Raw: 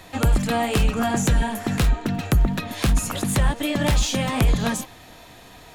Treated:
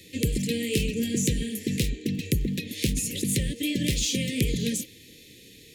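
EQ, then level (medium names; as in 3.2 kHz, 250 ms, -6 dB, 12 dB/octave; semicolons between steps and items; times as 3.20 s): high-pass 170 Hz 6 dB/octave; elliptic band-stop 480–1900 Hz, stop band 60 dB; Butterworth band-stop 1.1 kHz, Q 0.62; 0.0 dB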